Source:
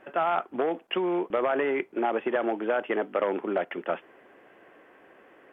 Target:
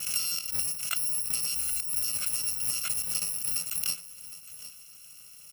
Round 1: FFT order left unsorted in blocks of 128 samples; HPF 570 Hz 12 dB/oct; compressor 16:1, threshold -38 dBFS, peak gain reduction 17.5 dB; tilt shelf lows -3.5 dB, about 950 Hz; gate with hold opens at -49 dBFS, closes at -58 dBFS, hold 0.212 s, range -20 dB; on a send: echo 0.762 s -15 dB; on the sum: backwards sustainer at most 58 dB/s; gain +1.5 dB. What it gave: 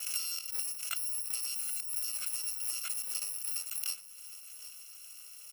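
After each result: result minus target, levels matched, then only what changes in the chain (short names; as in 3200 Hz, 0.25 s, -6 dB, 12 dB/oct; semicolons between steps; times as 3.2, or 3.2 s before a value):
compressor: peak gain reduction +6 dB; 500 Hz band -3.5 dB
change: compressor 16:1, threshold -31.5 dBFS, peak gain reduction 11.5 dB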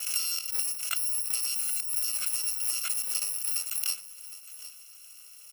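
500 Hz band -3.5 dB
remove: HPF 570 Hz 12 dB/oct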